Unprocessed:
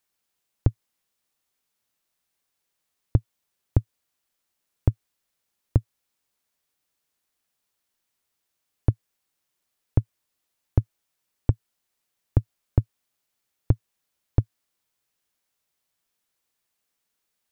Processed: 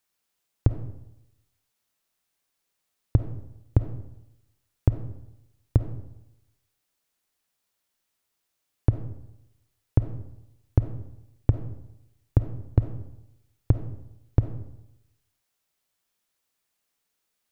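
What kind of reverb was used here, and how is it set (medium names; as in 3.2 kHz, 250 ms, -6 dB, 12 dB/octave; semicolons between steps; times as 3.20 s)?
algorithmic reverb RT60 0.88 s, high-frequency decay 0.6×, pre-delay 10 ms, DRR 8 dB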